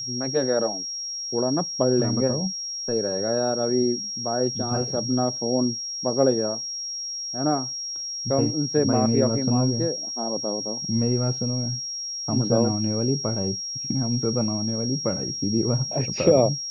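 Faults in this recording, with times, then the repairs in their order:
whistle 5,600 Hz −29 dBFS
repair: notch filter 5,600 Hz, Q 30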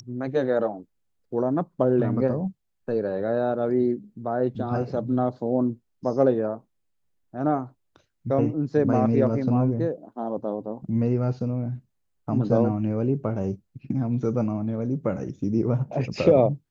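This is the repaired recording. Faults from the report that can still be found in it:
none of them is left

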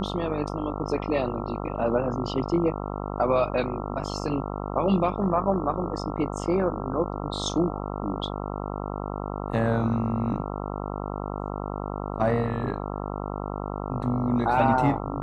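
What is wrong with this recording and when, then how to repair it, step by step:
mains buzz 50 Hz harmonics 27 −32 dBFS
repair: hum removal 50 Hz, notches 27

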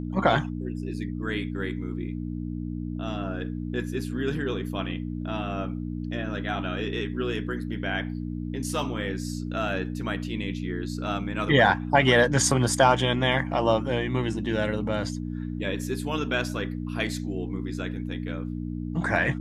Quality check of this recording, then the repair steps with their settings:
mains hum 60 Hz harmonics 5 −32 dBFS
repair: hum removal 60 Hz, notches 5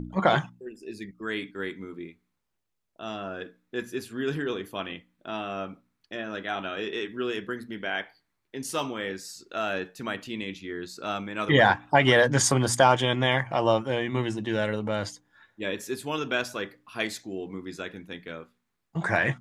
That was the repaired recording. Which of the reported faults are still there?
none of them is left

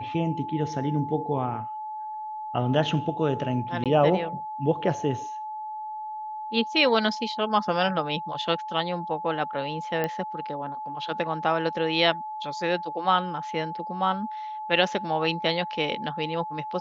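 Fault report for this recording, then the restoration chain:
whistle 860 Hz −32 dBFS
0:03.84–0:03.86: drop-out 17 ms
0:10.04: click −14 dBFS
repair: click removal
notch filter 860 Hz, Q 30
repair the gap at 0:03.84, 17 ms

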